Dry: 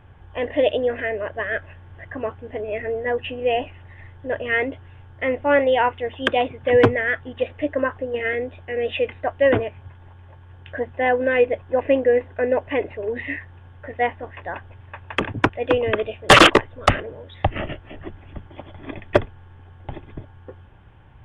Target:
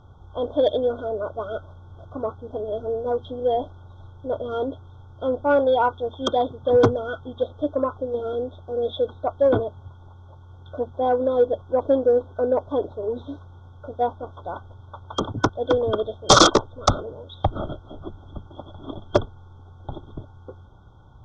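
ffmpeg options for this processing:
ffmpeg -i in.wav -af "afftfilt=real='re*(1-between(b*sr/4096,1500,3200))':imag='im*(1-between(b*sr/4096,1500,3200))':win_size=4096:overlap=0.75,acontrast=26,lowpass=frequency=5900:width_type=q:width=4.6,volume=-5.5dB" out.wav

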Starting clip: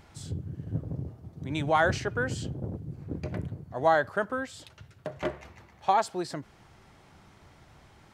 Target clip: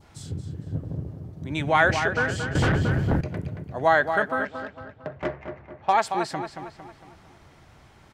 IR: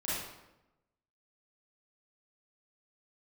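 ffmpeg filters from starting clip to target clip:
-filter_complex "[0:a]adynamicequalizer=threshold=0.00562:dfrequency=2100:dqfactor=1.3:tfrequency=2100:tqfactor=1.3:attack=5:release=100:ratio=0.375:range=4:mode=boostabove:tftype=bell,asplit=2[link_01][link_02];[link_02]adelay=227,lowpass=frequency=4700:poles=1,volume=-7.5dB,asplit=2[link_03][link_04];[link_04]adelay=227,lowpass=frequency=4700:poles=1,volume=0.48,asplit=2[link_05][link_06];[link_06]adelay=227,lowpass=frequency=4700:poles=1,volume=0.48,asplit=2[link_07][link_08];[link_08]adelay=227,lowpass=frequency=4700:poles=1,volume=0.48,asplit=2[link_09][link_10];[link_10]adelay=227,lowpass=frequency=4700:poles=1,volume=0.48,asplit=2[link_11][link_12];[link_12]adelay=227,lowpass=frequency=4700:poles=1,volume=0.48[link_13];[link_01][link_03][link_05][link_07][link_09][link_11][link_13]amix=inputs=7:normalize=0,asettb=1/sr,asplit=3[link_14][link_15][link_16];[link_14]atrim=end=2.554[link_17];[link_15]atrim=start=2.55:end=3.21,asetpts=PTS-STARTPTS,afade=type=in:duration=0.004:curve=qsin,afade=type=out:start_time=0.656:duration=0.004:curve=qsin,aeval=exprs='0.112*sin(PI/2*3.55*val(0)/0.112)':channel_layout=same[link_18];[link_16]atrim=start=3.206[link_19];[link_17][link_18]acrossfade=duration=0.004:curve1=hsin:curve2=qsin[link_20];[link_20][link_19]acrossfade=duration=0.004:curve1=qsin:curve2=hsin,asettb=1/sr,asplit=3[link_21][link_22][link_23];[link_21]atrim=end=4.454[link_24];[link_22]atrim=start=4.45:end=5.93,asetpts=PTS-STARTPTS,afade=type=in:duration=0.004:curve=qsin,afade=type=out:start_time=1.476:duration=0.004:curve=qsin,adynamicsmooth=sensitivity=2:basefreq=1600[link_25];[link_23]atrim=start=5.926[link_26];[link_24][link_25]acrossfade=duration=0.004:curve1=hsin:curve2=qsin[link_27];[link_27][link_26]acrossfade=duration=0.004:curve1=qsin:curve2=hsin,volume=2dB"

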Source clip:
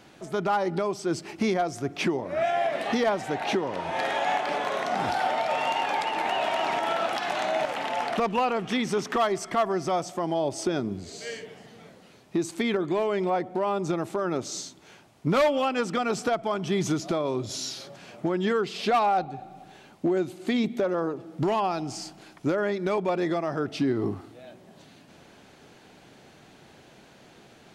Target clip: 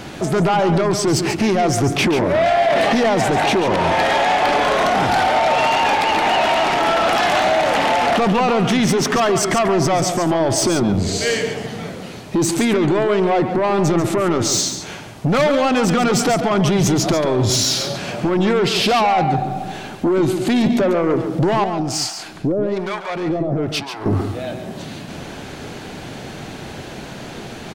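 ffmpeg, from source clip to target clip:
ffmpeg -i in.wav -filter_complex "[0:a]lowshelf=frequency=140:gain=8,alimiter=level_in=1dB:limit=-24dB:level=0:latency=1:release=12,volume=-1dB,aeval=exprs='0.106*(cos(1*acos(clip(val(0)/0.106,-1,1)))-cos(1*PI/2))+0.0422*(cos(5*acos(clip(val(0)/0.106,-1,1)))-cos(5*PI/2))':channel_layout=same,asettb=1/sr,asplit=3[link_01][link_02][link_03];[link_01]atrim=end=21.644[link_04];[link_02]atrim=start=21.64:end=24.06,asetpts=PTS-STARTPTS,afade=type=in:duration=0.004:curve=qsin,afade=type=out:start_time=2.416:duration=0.004:curve=qsin,acrossover=split=720[link_05][link_06];[link_05]aeval=exprs='val(0)*(1-1/2+1/2*cos(2*PI*1.1*n/s))':channel_layout=same[link_07];[link_06]aeval=exprs='val(0)*(1-1/2-1/2*cos(2*PI*1.1*n/s))':channel_layout=same[link_08];[link_07][link_08]amix=inputs=2:normalize=0[link_09];[link_03]atrim=start=24.056[link_10];[link_04][link_09]acrossfade=duration=0.004:curve1=hsin:curve2=qsin[link_11];[link_11][link_10]acrossfade=duration=0.004:curve1=qsin:curve2=hsin,aecho=1:1:140:0.355,volume=9dB" out.wav

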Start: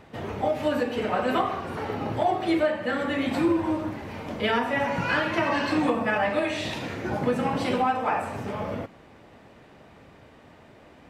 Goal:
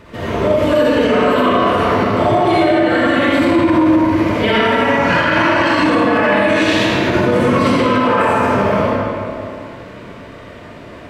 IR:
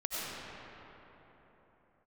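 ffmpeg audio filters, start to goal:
-filter_complex "[0:a]asuperstop=centerf=790:order=20:qfactor=7.3[link_01];[1:a]atrim=start_sample=2205,asetrate=74970,aresample=44100[link_02];[link_01][link_02]afir=irnorm=-1:irlink=0,alimiter=level_in=19.5dB:limit=-1dB:release=50:level=0:latency=1,volume=-4dB"

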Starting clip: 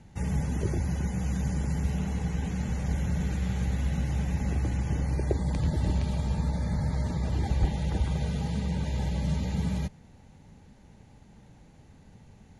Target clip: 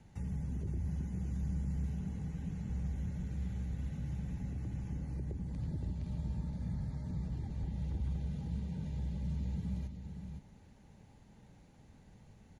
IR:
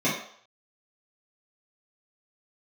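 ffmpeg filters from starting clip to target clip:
-filter_complex "[0:a]acrossover=split=290[link_01][link_02];[link_01]alimiter=level_in=1dB:limit=-24dB:level=0:latency=1,volume=-1dB[link_03];[link_02]acompressor=threshold=-53dB:ratio=6[link_04];[link_03][link_04]amix=inputs=2:normalize=0,aecho=1:1:516:0.447,volume=-6.5dB" -ar 48000 -c:a libopus -b:a 64k

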